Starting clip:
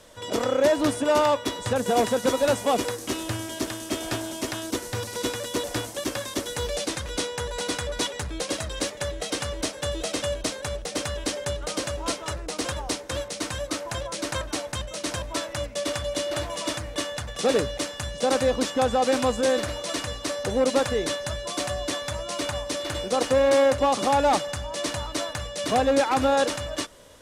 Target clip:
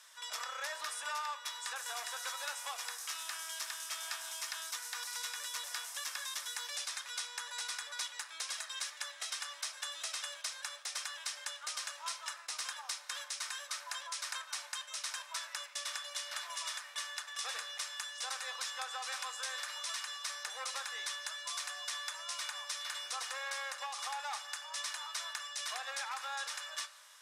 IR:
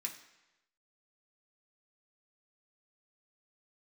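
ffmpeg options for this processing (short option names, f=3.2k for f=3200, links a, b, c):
-filter_complex "[0:a]highpass=f=1k:w=0.5412,highpass=f=1k:w=1.3066,acompressor=threshold=-33dB:ratio=6,asplit=2[a][b];[1:a]atrim=start_sample=2205,asetrate=29106,aresample=44100[c];[b][c]afir=irnorm=-1:irlink=0,volume=-6dB[d];[a][d]amix=inputs=2:normalize=0,volume=-7dB"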